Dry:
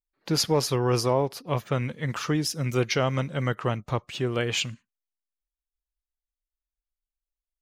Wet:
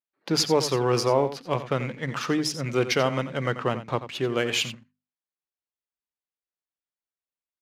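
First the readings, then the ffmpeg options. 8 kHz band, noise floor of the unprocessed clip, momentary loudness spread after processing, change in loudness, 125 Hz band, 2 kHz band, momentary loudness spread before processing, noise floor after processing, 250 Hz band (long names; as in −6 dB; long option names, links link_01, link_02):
0.0 dB, below −85 dBFS, 8 LU, +1.0 dB, −3.5 dB, +2.0 dB, 7 LU, below −85 dBFS, +1.0 dB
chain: -filter_complex "[0:a]highpass=160,bandreject=frequency=50:width_type=h:width=6,bandreject=frequency=100:width_type=h:width=6,bandreject=frequency=150:width_type=h:width=6,bandreject=frequency=200:width_type=h:width=6,bandreject=frequency=250:width_type=h:width=6,asplit=2[link_01][link_02];[link_02]acrusher=bits=6:mix=0:aa=0.000001,volume=-11dB[link_03];[link_01][link_03]amix=inputs=2:normalize=0,adynamicsmooth=sensitivity=6:basefreq=3800,asplit=2[link_04][link_05];[link_05]aecho=0:1:88:0.237[link_06];[link_04][link_06]amix=inputs=2:normalize=0,aresample=32000,aresample=44100"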